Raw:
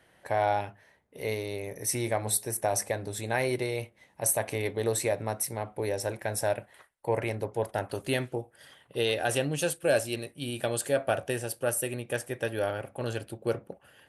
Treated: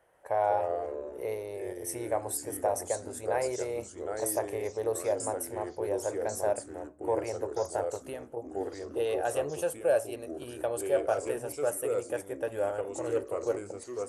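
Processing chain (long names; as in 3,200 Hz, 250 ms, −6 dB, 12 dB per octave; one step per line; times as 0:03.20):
octave-band graphic EQ 125/250/500/1,000/2,000/4,000 Hz −6/−9/+7/+5/−4/−11 dB
0:07.96–0:08.37: downward compressor, threshold −32 dBFS, peak gain reduction 9.5 dB
delay with pitch and tempo change per echo 133 ms, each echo −3 semitones, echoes 3, each echo −6 dB
level −5.5 dB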